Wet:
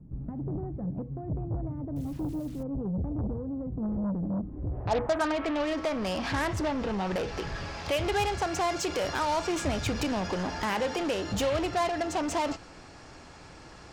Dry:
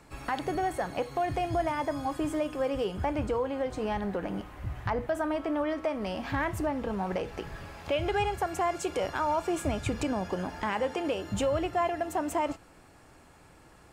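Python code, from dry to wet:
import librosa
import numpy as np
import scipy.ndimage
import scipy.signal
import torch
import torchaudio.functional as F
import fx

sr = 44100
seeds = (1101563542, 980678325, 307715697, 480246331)

p1 = fx.filter_sweep_lowpass(x, sr, from_hz=180.0, to_hz=5500.0, start_s=4.36, end_s=5.77, q=2.2)
p2 = fx.quant_dither(p1, sr, seeds[0], bits=10, dither='none', at=(1.96, 2.63))
p3 = fx.fold_sine(p2, sr, drive_db=9, ceiling_db=-25.0)
y = p2 + (p3 * librosa.db_to_amplitude(-11.5))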